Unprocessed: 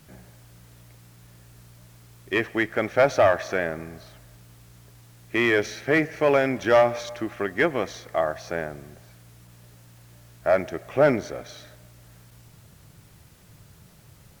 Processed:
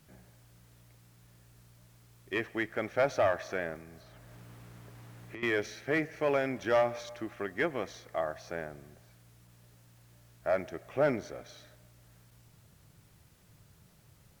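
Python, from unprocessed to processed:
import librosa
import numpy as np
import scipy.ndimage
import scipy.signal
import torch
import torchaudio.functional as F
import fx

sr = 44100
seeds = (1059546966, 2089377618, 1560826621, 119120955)

y = fx.band_squash(x, sr, depth_pct=100, at=(3.75, 5.43))
y = F.gain(torch.from_numpy(y), -9.0).numpy()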